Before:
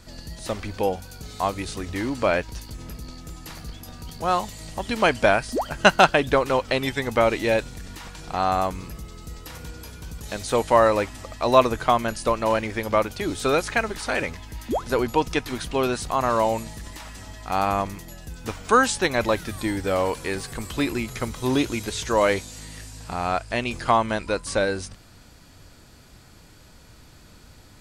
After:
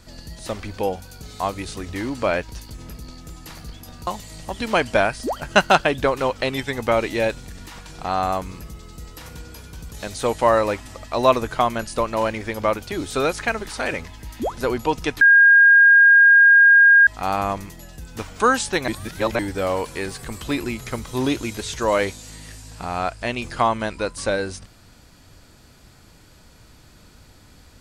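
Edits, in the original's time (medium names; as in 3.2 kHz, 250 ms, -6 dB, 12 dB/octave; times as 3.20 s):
4.07–4.36 s: delete
15.50–17.36 s: bleep 1.62 kHz -8 dBFS
19.17–19.68 s: reverse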